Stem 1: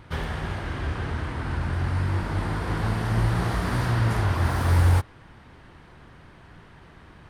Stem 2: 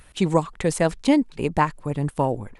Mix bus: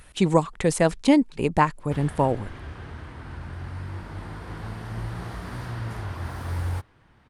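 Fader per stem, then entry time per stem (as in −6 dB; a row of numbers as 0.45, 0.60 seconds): −9.5, +0.5 decibels; 1.80, 0.00 seconds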